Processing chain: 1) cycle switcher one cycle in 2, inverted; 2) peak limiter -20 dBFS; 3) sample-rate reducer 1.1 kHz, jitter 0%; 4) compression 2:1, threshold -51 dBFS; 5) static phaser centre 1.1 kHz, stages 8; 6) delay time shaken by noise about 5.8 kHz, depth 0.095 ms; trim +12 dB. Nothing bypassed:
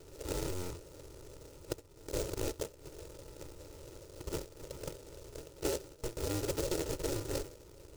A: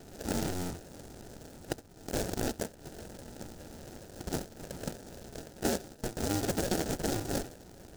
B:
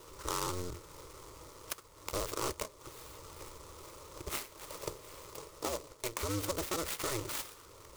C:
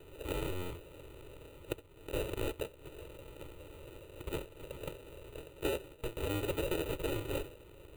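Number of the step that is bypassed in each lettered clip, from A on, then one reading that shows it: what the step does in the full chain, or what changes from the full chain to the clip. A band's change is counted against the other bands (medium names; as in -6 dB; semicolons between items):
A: 5, 500 Hz band -4.0 dB; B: 3, 1 kHz band +7.0 dB; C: 6, 8 kHz band -9.0 dB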